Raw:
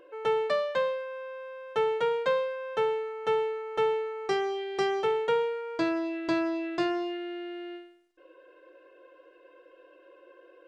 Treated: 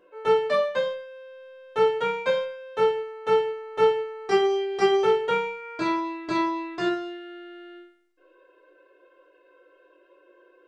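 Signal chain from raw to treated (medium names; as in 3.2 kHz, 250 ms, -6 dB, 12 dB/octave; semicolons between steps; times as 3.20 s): reverberation RT60 0.50 s, pre-delay 5 ms, DRR -4 dB; upward expansion 1.5:1, over -35 dBFS; trim +2 dB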